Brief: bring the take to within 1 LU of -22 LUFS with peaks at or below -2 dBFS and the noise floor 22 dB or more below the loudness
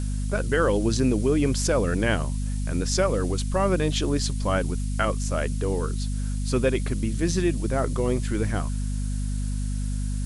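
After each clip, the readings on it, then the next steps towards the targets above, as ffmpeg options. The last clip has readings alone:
hum 50 Hz; highest harmonic 250 Hz; hum level -24 dBFS; noise floor -27 dBFS; noise floor target -48 dBFS; loudness -25.5 LUFS; peak level -9.0 dBFS; loudness target -22.0 LUFS
-> -af "bandreject=f=50:t=h:w=4,bandreject=f=100:t=h:w=4,bandreject=f=150:t=h:w=4,bandreject=f=200:t=h:w=4,bandreject=f=250:t=h:w=4"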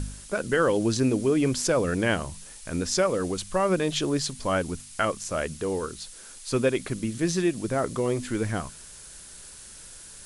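hum not found; noise floor -46 dBFS; noise floor target -49 dBFS
-> -af "afftdn=nr=6:nf=-46"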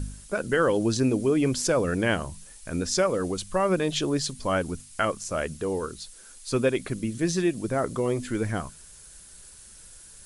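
noise floor -49 dBFS; loudness -26.5 LUFS; peak level -9.5 dBFS; loudness target -22.0 LUFS
-> -af "volume=1.68"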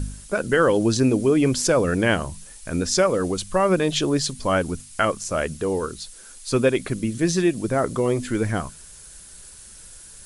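loudness -22.0 LUFS; peak level -5.0 dBFS; noise floor -44 dBFS

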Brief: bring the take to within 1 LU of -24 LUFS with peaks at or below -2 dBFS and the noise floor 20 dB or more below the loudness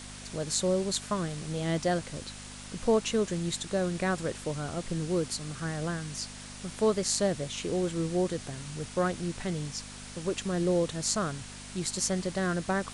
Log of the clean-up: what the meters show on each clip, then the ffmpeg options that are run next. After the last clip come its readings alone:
hum 50 Hz; highest harmonic 250 Hz; hum level -45 dBFS; noise floor -45 dBFS; noise floor target -51 dBFS; loudness -31.0 LUFS; peak level -10.0 dBFS; loudness target -24.0 LUFS
-> -af "bandreject=f=50:t=h:w=4,bandreject=f=100:t=h:w=4,bandreject=f=150:t=h:w=4,bandreject=f=200:t=h:w=4,bandreject=f=250:t=h:w=4"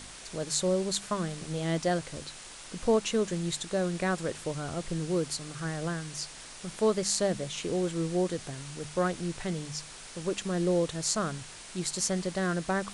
hum not found; noise floor -46 dBFS; noise floor target -51 dBFS
-> -af "afftdn=nr=6:nf=-46"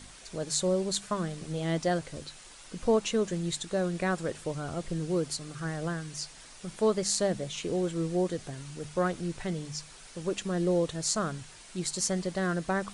noise floor -50 dBFS; noise floor target -51 dBFS
-> -af "afftdn=nr=6:nf=-50"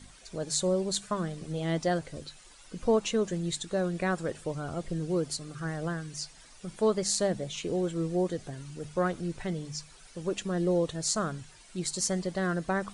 noise floor -54 dBFS; loudness -31.0 LUFS; peak level -10.0 dBFS; loudness target -24.0 LUFS
-> -af "volume=2.24"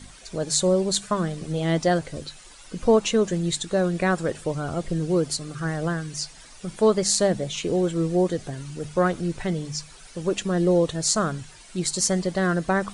loudness -24.0 LUFS; peak level -3.0 dBFS; noise floor -47 dBFS

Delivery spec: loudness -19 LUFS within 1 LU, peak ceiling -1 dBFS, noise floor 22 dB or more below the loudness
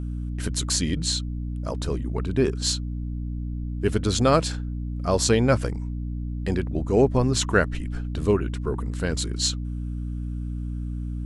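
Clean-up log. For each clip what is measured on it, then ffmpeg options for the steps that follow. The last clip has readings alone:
hum 60 Hz; highest harmonic 300 Hz; hum level -27 dBFS; loudness -25.5 LUFS; peak level -4.5 dBFS; loudness target -19.0 LUFS
-> -af "bandreject=f=60:t=h:w=4,bandreject=f=120:t=h:w=4,bandreject=f=180:t=h:w=4,bandreject=f=240:t=h:w=4,bandreject=f=300:t=h:w=4"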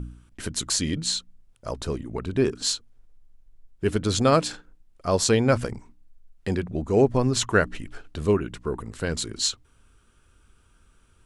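hum not found; loudness -25.0 LUFS; peak level -5.5 dBFS; loudness target -19.0 LUFS
-> -af "volume=2,alimiter=limit=0.891:level=0:latency=1"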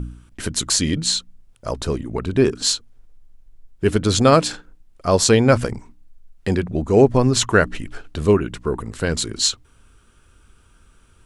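loudness -19.0 LUFS; peak level -1.0 dBFS; noise floor -54 dBFS

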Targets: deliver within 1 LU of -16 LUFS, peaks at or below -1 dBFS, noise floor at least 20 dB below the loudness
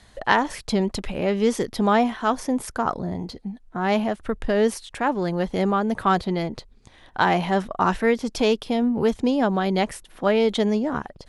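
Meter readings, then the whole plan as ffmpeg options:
loudness -23.0 LUFS; peak level -3.0 dBFS; loudness target -16.0 LUFS
-> -af "volume=2.24,alimiter=limit=0.891:level=0:latency=1"

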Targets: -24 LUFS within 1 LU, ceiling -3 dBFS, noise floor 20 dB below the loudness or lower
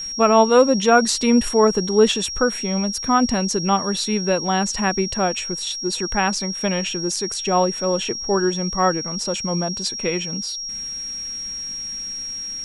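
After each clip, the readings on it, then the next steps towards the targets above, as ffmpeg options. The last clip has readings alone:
steady tone 5.6 kHz; tone level -27 dBFS; loudness -20.0 LUFS; peak level -3.0 dBFS; loudness target -24.0 LUFS
-> -af "bandreject=f=5600:w=30"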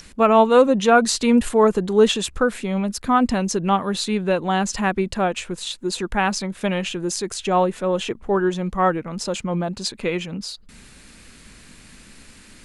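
steady tone not found; loudness -20.5 LUFS; peak level -3.5 dBFS; loudness target -24.0 LUFS
-> -af "volume=0.668"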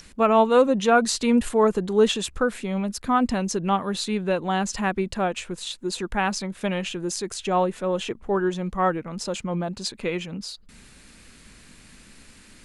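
loudness -24.0 LUFS; peak level -7.0 dBFS; noise floor -51 dBFS

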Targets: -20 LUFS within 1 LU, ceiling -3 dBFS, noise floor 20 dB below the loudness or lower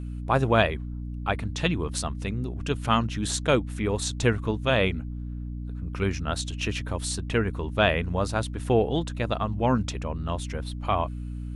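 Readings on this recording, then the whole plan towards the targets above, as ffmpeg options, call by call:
hum 60 Hz; highest harmonic 300 Hz; hum level -31 dBFS; loudness -27.0 LUFS; peak level -5.5 dBFS; loudness target -20.0 LUFS
-> -af "bandreject=f=60:t=h:w=4,bandreject=f=120:t=h:w=4,bandreject=f=180:t=h:w=4,bandreject=f=240:t=h:w=4,bandreject=f=300:t=h:w=4"
-af "volume=2.24,alimiter=limit=0.708:level=0:latency=1"

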